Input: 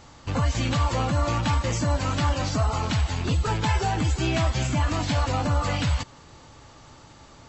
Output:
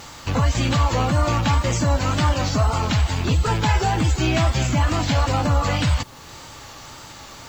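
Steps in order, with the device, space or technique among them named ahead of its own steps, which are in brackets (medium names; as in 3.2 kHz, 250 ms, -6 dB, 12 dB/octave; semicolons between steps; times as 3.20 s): noise-reduction cassette on a plain deck (tape noise reduction on one side only encoder only; wow and flutter 47 cents; white noise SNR 35 dB); trim +4.5 dB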